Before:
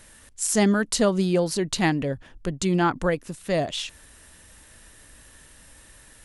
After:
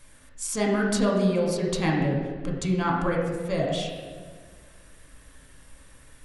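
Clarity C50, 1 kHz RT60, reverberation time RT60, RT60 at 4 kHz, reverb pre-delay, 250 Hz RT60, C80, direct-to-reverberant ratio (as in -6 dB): 2.0 dB, 1.4 s, 1.6 s, 1.1 s, 4 ms, 2.0 s, 4.0 dB, -2.0 dB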